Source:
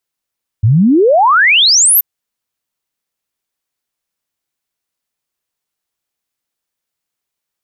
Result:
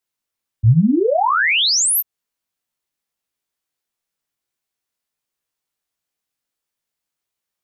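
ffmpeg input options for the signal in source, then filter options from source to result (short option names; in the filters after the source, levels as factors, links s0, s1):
-f lavfi -i "aevalsrc='0.531*clip(min(t,1.38-t)/0.01,0,1)*sin(2*PI*99*1.38/log(14000/99)*(exp(log(14000/99)*t/1.38)-1))':d=1.38:s=44100"
-filter_complex "[0:a]acrossover=split=150[s0][s1];[s1]acompressor=threshold=0.2:ratio=2.5[s2];[s0][s2]amix=inputs=2:normalize=0,flanger=delay=16.5:depth=4.2:speed=1.5"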